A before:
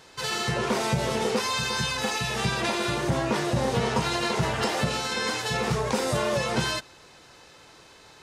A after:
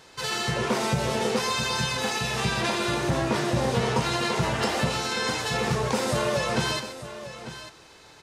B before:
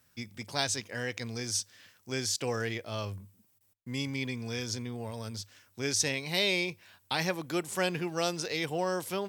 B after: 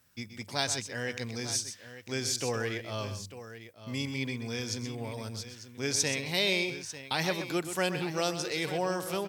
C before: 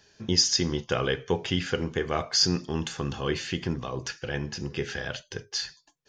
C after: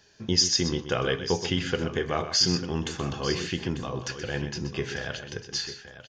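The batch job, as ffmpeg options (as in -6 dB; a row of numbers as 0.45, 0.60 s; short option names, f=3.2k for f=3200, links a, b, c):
-af "aecho=1:1:126|896:0.299|0.224"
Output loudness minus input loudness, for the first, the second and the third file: +0.5, +0.5, +0.5 LU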